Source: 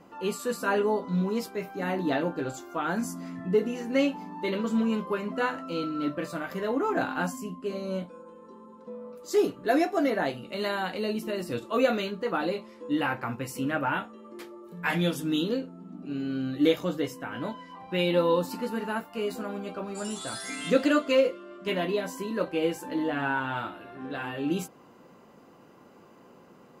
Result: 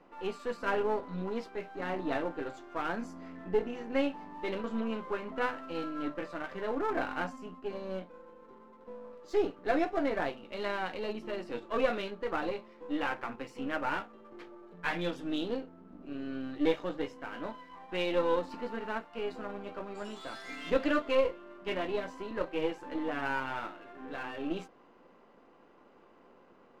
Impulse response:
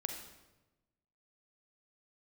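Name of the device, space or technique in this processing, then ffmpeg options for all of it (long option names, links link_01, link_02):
crystal radio: -af "highpass=260,lowpass=3200,aeval=exprs='if(lt(val(0),0),0.447*val(0),val(0))':channel_layout=same,volume=-2dB"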